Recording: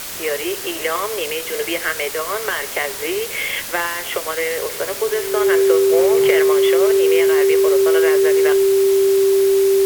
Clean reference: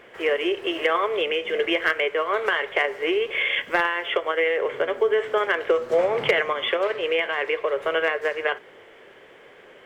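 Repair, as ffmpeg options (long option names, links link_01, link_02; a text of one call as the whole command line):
ffmpeg -i in.wav -af "adeclick=threshold=4,bandreject=frequency=390:width=30,afwtdn=0.035" out.wav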